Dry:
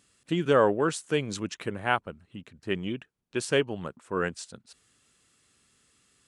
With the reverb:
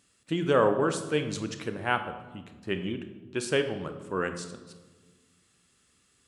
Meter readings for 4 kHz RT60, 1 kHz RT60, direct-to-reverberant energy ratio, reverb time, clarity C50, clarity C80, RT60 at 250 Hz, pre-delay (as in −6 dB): 0.90 s, 1.3 s, 7.5 dB, 1.4 s, 9.5 dB, 11.5 dB, 2.0 s, 26 ms